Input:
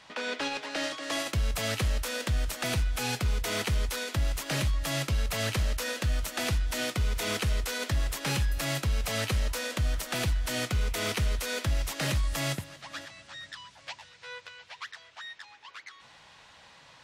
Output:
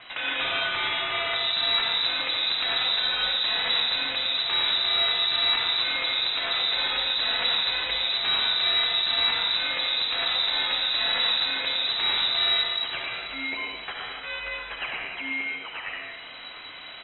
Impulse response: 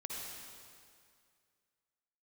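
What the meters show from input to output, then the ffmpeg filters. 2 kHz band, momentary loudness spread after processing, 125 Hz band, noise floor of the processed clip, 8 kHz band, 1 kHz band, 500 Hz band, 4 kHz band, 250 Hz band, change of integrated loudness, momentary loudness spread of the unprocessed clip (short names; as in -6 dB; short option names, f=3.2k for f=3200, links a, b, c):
+7.5 dB, 11 LU, under -20 dB, -41 dBFS, under -40 dB, +6.0 dB, -2.0 dB, +15.0 dB, -8.0 dB, +7.5 dB, 14 LU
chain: -filter_complex "[0:a]equalizer=f=420:t=o:w=1.9:g=-8,alimiter=level_in=5.5dB:limit=-24dB:level=0:latency=1:release=216,volume=-5.5dB,acrossover=split=130[a][b];[a]aeval=exprs='0.0316*sin(PI/2*5.62*val(0)/0.0316)':c=same[c];[b]acontrast=75[d];[c][d]amix=inputs=2:normalize=0,asplit=2[e][f];[f]adelay=37,volume=-13dB[g];[e][g]amix=inputs=2:normalize=0[h];[1:a]atrim=start_sample=2205,afade=t=out:st=0.32:d=0.01,atrim=end_sample=14553,asetrate=39249,aresample=44100[i];[h][i]afir=irnorm=-1:irlink=0,lowpass=f=3.4k:t=q:w=0.5098,lowpass=f=3.4k:t=q:w=0.6013,lowpass=f=3.4k:t=q:w=0.9,lowpass=f=3.4k:t=q:w=2.563,afreqshift=-4000,volume=7.5dB"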